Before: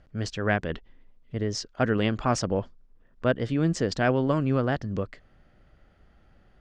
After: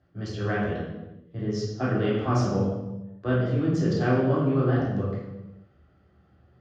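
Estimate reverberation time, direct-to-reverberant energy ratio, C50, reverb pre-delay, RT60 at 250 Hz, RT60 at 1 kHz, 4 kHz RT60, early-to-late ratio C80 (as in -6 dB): 1.0 s, -8.5 dB, 0.5 dB, 3 ms, n/a, 0.95 s, 0.80 s, 3.0 dB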